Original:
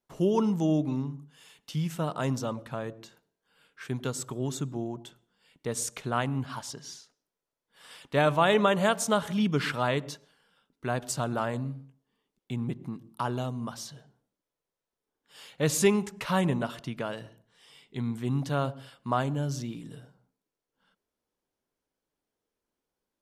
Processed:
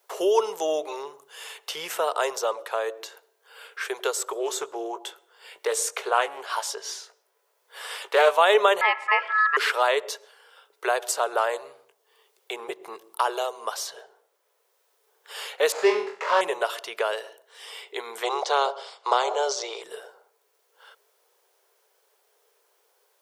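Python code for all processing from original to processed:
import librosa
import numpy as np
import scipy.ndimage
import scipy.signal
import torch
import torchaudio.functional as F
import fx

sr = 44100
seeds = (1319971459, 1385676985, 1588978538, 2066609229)

y = fx.chain(x, sr, fx.doubler(ms=18.0, db=-9),
    fx.doppler_dist(depth_ms=0.17), at=(4.37, 8.31))
y = fx.chain(y, sr, fx.lowpass(hz=1300.0, slope=12),
    fx.ring_mod(carrier_hz=1500.0), at=(8.81, 9.57))
y = fx.chain(y, sr, fx.median_filter(points=15),
    fx.lowpass(hz=4300.0, slope=12),
    fx.room_flutter(wall_m=4.0, rt60_s=0.37), at=(15.72, 16.41))
y = fx.spec_clip(y, sr, under_db=17, at=(18.22, 19.82), fade=0.02)
y = fx.cabinet(y, sr, low_hz=240.0, low_slope=24, high_hz=6600.0, hz=(290.0, 790.0, 1700.0, 2700.0), db=(-8, 4, -10, -8), at=(18.22, 19.82), fade=0.02)
y = scipy.signal.sosfilt(scipy.signal.ellip(4, 1.0, 40, 410.0, 'highpass', fs=sr, output='sos'), y)
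y = fx.high_shelf(y, sr, hz=12000.0, db=7.0)
y = fx.band_squash(y, sr, depth_pct=40)
y = y * librosa.db_to_amplitude(8.5)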